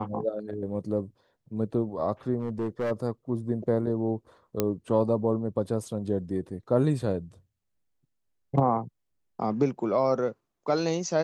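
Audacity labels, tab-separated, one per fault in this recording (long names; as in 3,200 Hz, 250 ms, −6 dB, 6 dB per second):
2.400000	2.920000	clipping −25 dBFS
4.600000	4.600000	click −10 dBFS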